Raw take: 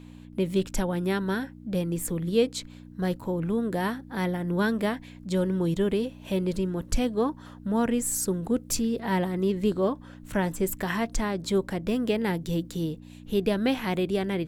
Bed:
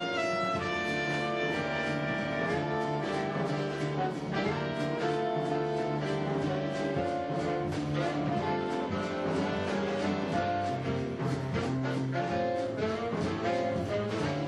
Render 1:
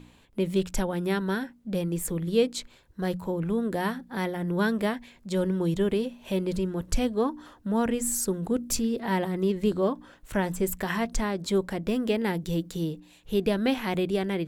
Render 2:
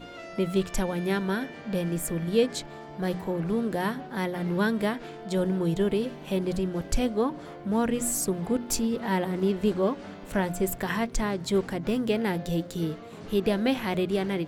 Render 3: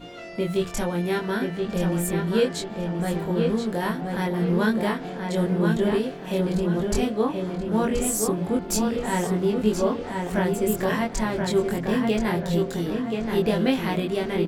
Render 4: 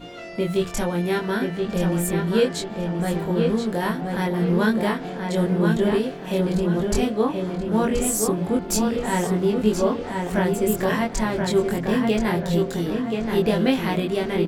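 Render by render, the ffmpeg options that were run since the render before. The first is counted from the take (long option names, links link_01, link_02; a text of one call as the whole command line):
ffmpeg -i in.wav -af "bandreject=frequency=60:width_type=h:width=4,bandreject=frequency=120:width_type=h:width=4,bandreject=frequency=180:width_type=h:width=4,bandreject=frequency=240:width_type=h:width=4,bandreject=frequency=300:width_type=h:width=4" out.wav
ffmpeg -i in.wav -i bed.wav -filter_complex "[1:a]volume=-11.5dB[link_01];[0:a][link_01]amix=inputs=2:normalize=0" out.wav
ffmpeg -i in.wav -filter_complex "[0:a]asplit=2[link_01][link_02];[link_02]adelay=23,volume=-2dB[link_03];[link_01][link_03]amix=inputs=2:normalize=0,asplit=2[link_04][link_05];[link_05]adelay=1028,lowpass=frequency=3500:poles=1,volume=-4dB,asplit=2[link_06][link_07];[link_07]adelay=1028,lowpass=frequency=3500:poles=1,volume=0.38,asplit=2[link_08][link_09];[link_09]adelay=1028,lowpass=frequency=3500:poles=1,volume=0.38,asplit=2[link_10][link_11];[link_11]adelay=1028,lowpass=frequency=3500:poles=1,volume=0.38,asplit=2[link_12][link_13];[link_13]adelay=1028,lowpass=frequency=3500:poles=1,volume=0.38[link_14];[link_04][link_06][link_08][link_10][link_12][link_14]amix=inputs=6:normalize=0" out.wav
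ffmpeg -i in.wav -af "volume=2dB" out.wav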